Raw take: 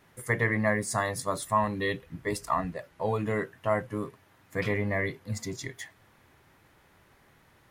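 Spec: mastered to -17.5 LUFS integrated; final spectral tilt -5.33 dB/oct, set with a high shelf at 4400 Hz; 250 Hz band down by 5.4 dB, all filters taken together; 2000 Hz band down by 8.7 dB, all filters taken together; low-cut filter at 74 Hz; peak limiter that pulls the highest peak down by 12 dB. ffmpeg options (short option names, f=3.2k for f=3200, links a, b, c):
-af "highpass=74,equalizer=f=250:t=o:g=-7,equalizer=f=2k:t=o:g=-8.5,highshelf=f=4.4k:g=-6.5,volume=20.5dB,alimiter=limit=-6dB:level=0:latency=1"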